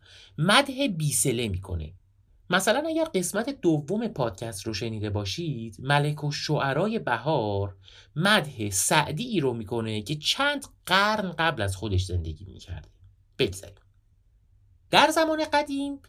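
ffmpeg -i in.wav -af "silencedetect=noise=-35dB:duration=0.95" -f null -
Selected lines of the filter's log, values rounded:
silence_start: 13.68
silence_end: 14.92 | silence_duration: 1.24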